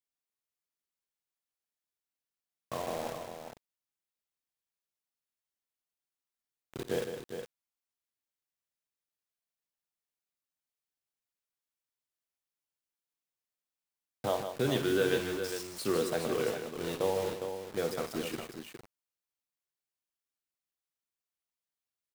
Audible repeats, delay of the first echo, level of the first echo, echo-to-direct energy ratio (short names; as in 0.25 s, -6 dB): 3, 54 ms, -14.0 dB, -4.5 dB